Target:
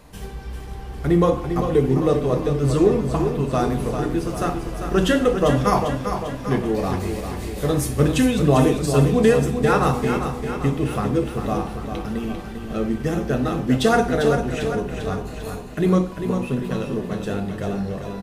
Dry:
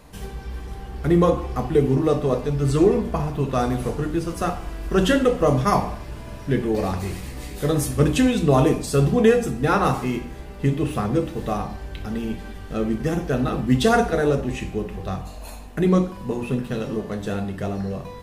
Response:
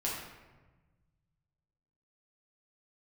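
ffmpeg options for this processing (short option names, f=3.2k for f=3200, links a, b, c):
-af "aecho=1:1:397|794|1191|1588|1985|2382|2779:0.422|0.24|0.137|0.0781|0.0445|0.0254|0.0145"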